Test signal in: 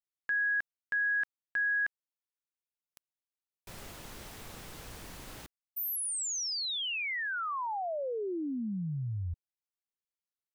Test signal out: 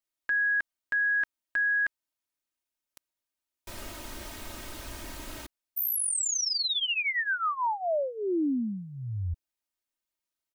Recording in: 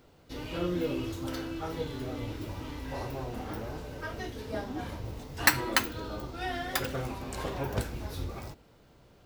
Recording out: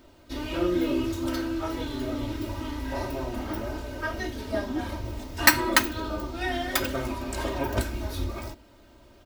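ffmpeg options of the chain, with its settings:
ffmpeg -i in.wav -af "aecho=1:1:3.2:0.75,volume=3.5dB" out.wav

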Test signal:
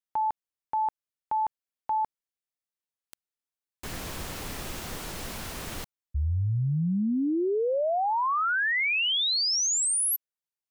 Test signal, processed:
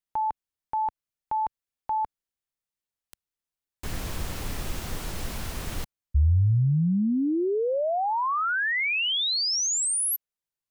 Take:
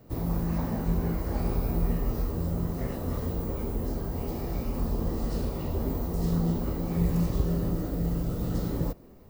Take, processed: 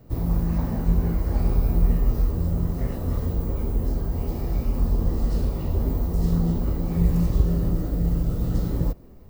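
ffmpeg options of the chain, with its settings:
ffmpeg -i in.wav -af "lowshelf=frequency=120:gain=10" out.wav

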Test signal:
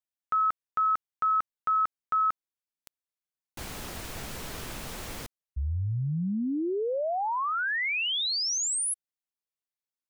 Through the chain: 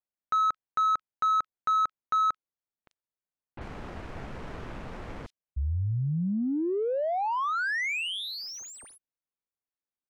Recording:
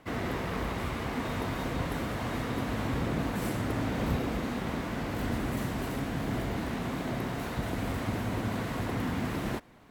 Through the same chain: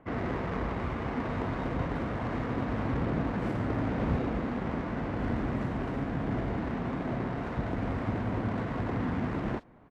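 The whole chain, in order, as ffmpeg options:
ffmpeg -i in.wav -filter_complex "[0:a]acrossover=split=3800[link_01][link_02];[link_02]adelay=40[link_03];[link_01][link_03]amix=inputs=2:normalize=0,adynamicsmooth=sensitivity=3.5:basefreq=1800,volume=1dB" out.wav

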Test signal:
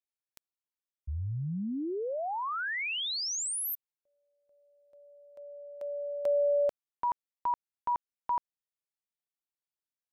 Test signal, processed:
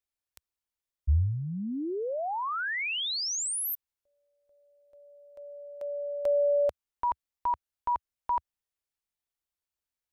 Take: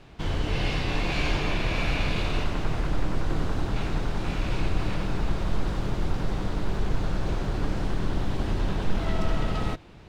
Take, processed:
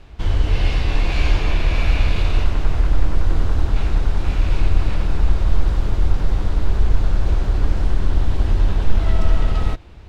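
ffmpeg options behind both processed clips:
ffmpeg -i in.wav -af "lowshelf=frequency=100:width_type=q:width=1.5:gain=9,volume=2dB" out.wav

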